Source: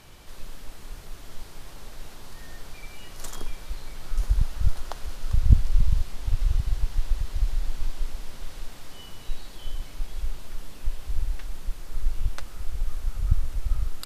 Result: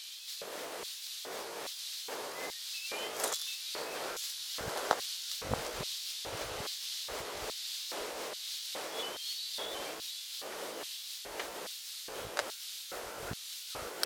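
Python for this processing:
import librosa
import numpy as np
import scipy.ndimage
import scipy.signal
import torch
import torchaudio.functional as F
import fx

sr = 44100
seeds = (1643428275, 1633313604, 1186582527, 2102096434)

y = fx.pitch_ramps(x, sr, semitones=2.5, every_ms=361)
y = fx.filter_lfo_highpass(y, sr, shape='square', hz=1.2, low_hz=470.0, high_hz=3800.0, q=2.2)
y = fx.doppler_dist(y, sr, depth_ms=0.86)
y = y * 10.0 ** (8.0 / 20.0)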